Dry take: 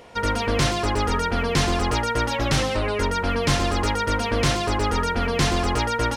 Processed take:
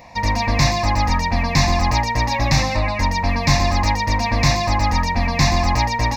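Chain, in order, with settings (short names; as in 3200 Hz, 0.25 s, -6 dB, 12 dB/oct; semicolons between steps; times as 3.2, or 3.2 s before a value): fixed phaser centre 2100 Hz, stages 8; gain +7 dB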